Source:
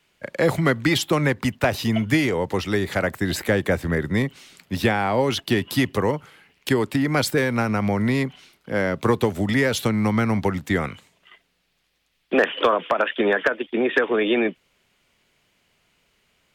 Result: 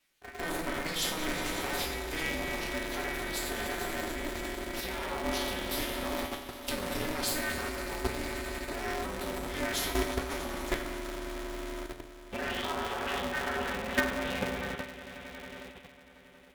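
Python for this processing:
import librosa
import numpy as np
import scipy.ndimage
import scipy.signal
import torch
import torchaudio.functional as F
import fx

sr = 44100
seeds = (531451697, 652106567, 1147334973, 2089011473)

p1 = fx.low_shelf(x, sr, hz=93.0, db=-3.0)
p2 = p1 + 0.84 * np.pad(p1, (int(5.3 * sr / 1000.0), 0))[:len(p1)]
p3 = p2 + fx.echo_swell(p2, sr, ms=91, loudest=5, wet_db=-15.5, dry=0)
p4 = fx.rev_fdn(p3, sr, rt60_s=2.0, lf_ratio=1.25, hf_ratio=0.75, size_ms=28.0, drr_db=2.5)
p5 = fx.level_steps(p4, sr, step_db=11)
p6 = fx.high_shelf(p5, sr, hz=5500.0, db=11.0)
p7 = fx.comb_fb(p6, sr, f0_hz=140.0, decay_s=0.42, harmonics='all', damping=0.0, mix_pct=90)
y = p7 * np.sign(np.sin(2.0 * np.pi * 160.0 * np.arange(len(p7)) / sr))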